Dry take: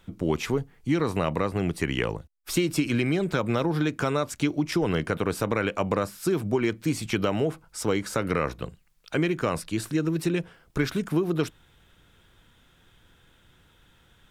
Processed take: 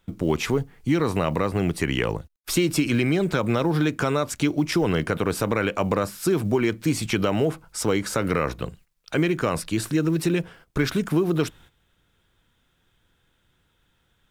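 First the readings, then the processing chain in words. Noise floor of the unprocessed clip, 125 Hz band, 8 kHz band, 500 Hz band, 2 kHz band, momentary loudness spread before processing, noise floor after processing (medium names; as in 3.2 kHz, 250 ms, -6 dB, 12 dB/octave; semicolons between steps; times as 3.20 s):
-61 dBFS, +3.5 dB, +5.0 dB, +3.0 dB, +3.0 dB, 5 LU, -68 dBFS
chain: gate -52 dBFS, range -13 dB; in parallel at -2 dB: peak limiter -21.5 dBFS, peak gain reduction 9.5 dB; on the sum: companded quantiser 8-bit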